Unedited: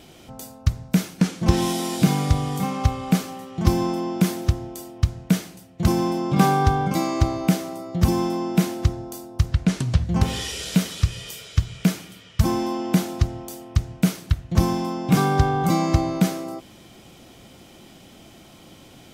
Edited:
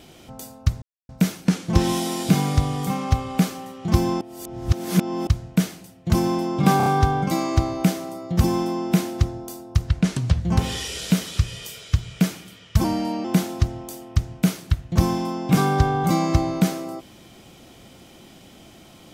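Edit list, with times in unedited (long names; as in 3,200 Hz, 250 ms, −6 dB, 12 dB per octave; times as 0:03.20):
0:00.82: splice in silence 0.27 s
0:03.94–0:05.00: reverse
0:06.50: stutter 0.03 s, 4 plays
0:12.48–0:12.84: play speed 89%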